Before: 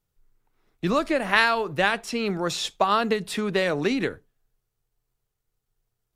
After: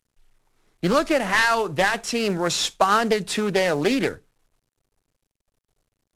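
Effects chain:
variable-slope delta modulation 64 kbit/s
dynamic equaliser 6,600 Hz, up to +5 dB, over −45 dBFS, Q 1.2
highs frequency-modulated by the lows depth 0.26 ms
level +3.5 dB

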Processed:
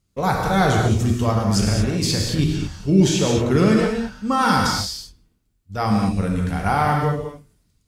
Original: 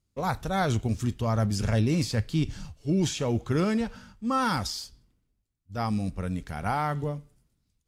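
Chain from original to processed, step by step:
0:01.31–0:02.39: compressor whose output falls as the input rises −29 dBFS, ratio −1
reverb whose tail is shaped and stops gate 250 ms flat, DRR −0.5 dB
level +6.5 dB

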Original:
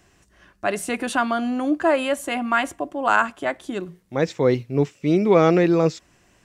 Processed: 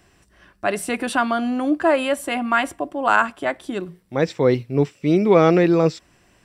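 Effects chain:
notch filter 6,600 Hz, Q 6.4
level +1.5 dB

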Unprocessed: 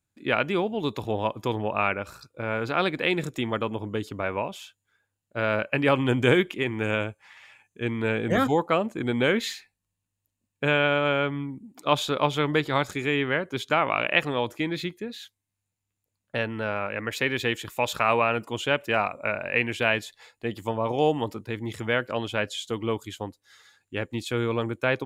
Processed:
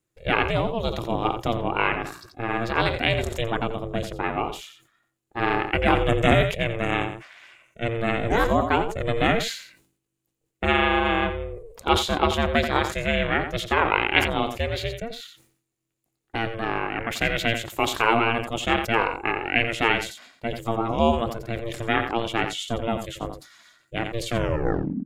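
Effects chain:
turntable brake at the end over 0.75 s
ring modulation 230 Hz
single-tap delay 87 ms −12.5 dB
level that may fall only so fast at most 100 dB per second
level +4.5 dB

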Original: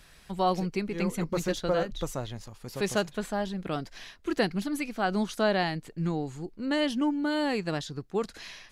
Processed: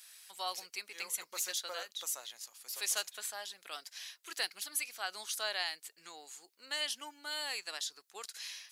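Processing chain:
high-pass filter 540 Hz 12 dB per octave
first difference
level +6 dB

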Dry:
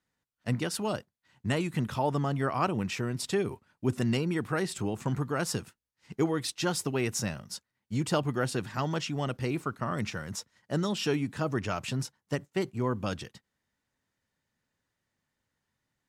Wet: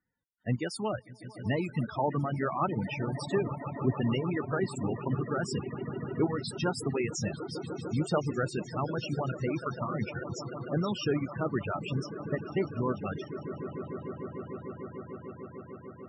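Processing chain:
echo that builds up and dies away 149 ms, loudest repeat 8, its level −14 dB
reverb reduction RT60 1.3 s
spectral peaks only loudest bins 32

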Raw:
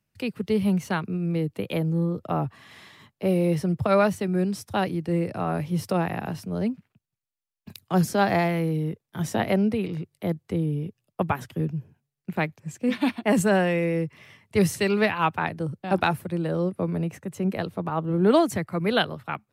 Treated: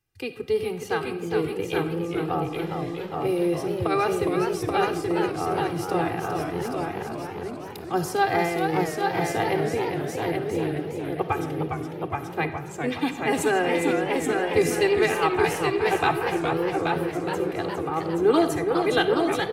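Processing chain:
comb filter 2.5 ms, depth 99%
single-tap delay 829 ms −4.5 dB
on a send at −10 dB: convolution reverb RT60 1.0 s, pre-delay 15 ms
on the sum: feedback echo with a swinging delay time 413 ms, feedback 61%, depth 173 cents, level −6 dB
level −3.5 dB

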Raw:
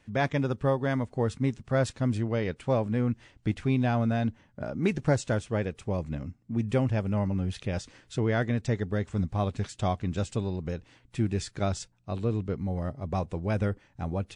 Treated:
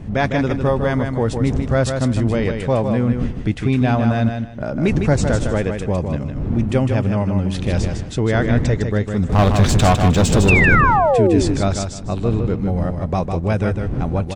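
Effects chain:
wind on the microphone 160 Hz −36 dBFS
in parallel at −0.5 dB: brickwall limiter −22 dBFS, peak gain reduction 10.5 dB
0:09.29–0:10.63: on the sum: leveller curve on the samples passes 3
0:10.48–0:11.41: sound drawn into the spectrogram fall 260–2,800 Hz −20 dBFS
repeating echo 155 ms, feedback 23%, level −6 dB
level +4.5 dB

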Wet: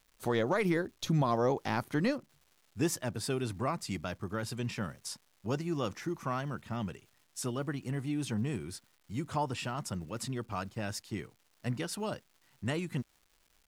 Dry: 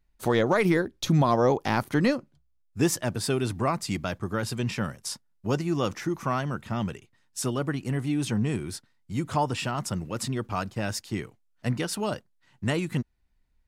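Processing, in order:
surface crackle 430 per second −47 dBFS
level −7 dB

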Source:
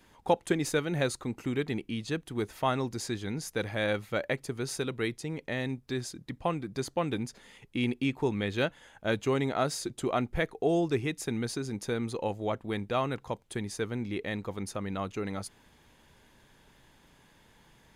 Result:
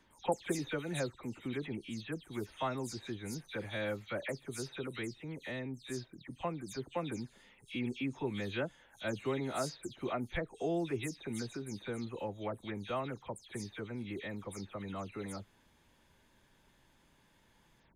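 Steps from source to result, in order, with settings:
every frequency bin delayed by itself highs early, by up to 153 ms
level −7 dB

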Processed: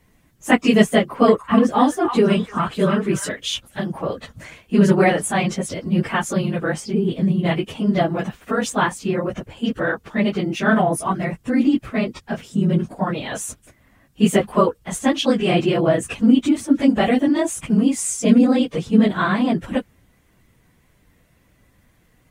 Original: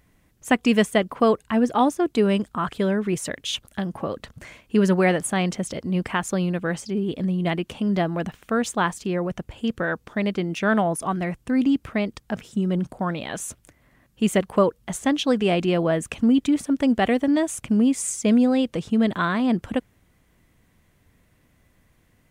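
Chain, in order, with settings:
random phases in long frames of 50 ms
0:00.98–0:03.32: echo through a band-pass that steps 297 ms, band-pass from 1,400 Hz, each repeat 1.4 octaves, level −4 dB
level +3.5 dB

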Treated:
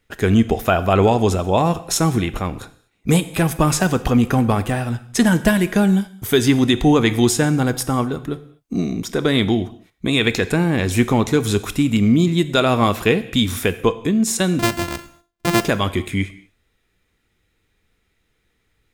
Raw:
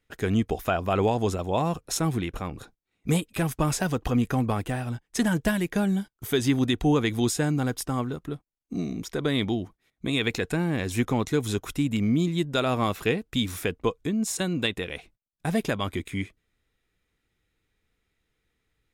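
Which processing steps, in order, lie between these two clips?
0:14.59–0:15.61: samples sorted by size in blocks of 128 samples
reverb whose tail is shaped and stops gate 270 ms falling, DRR 12 dB
level +8.5 dB

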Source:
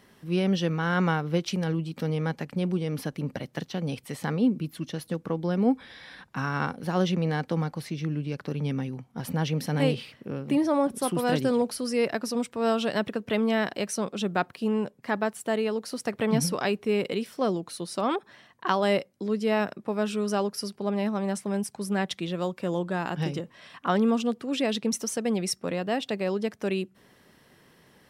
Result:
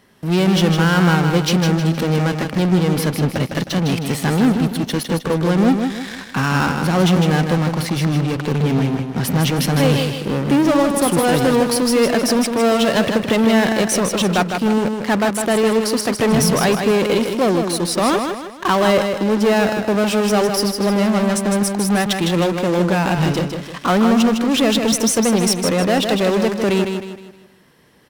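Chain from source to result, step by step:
in parallel at −9 dB: fuzz pedal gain 37 dB, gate −46 dBFS
on the sum: repeating echo 156 ms, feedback 40%, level −6 dB
level +3 dB

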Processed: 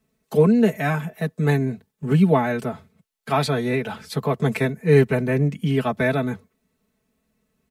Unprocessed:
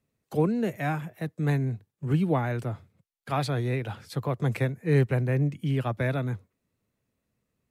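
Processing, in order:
comb filter 4.6 ms, depth 90%
level +5.5 dB

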